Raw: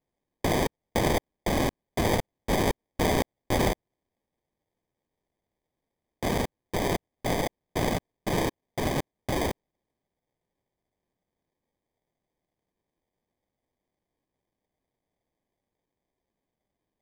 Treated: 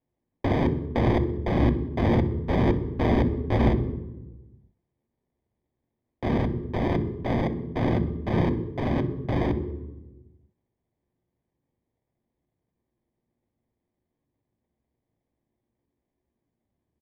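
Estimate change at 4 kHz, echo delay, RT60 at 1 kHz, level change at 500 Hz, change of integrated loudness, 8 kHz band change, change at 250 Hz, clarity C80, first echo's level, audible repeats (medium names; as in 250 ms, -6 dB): -8.0 dB, 63 ms, 0.95 s, +1.0 dB, +3.0 dB, under -20 dB, +6.0 dB, 12.5 dB, -17.0 dB, 1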